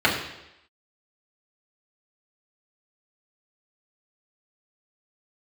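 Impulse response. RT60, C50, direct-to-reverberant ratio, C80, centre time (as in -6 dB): 0.85 s, 5.5 dB, -5.5 dB, 8.0 dB, 36 ms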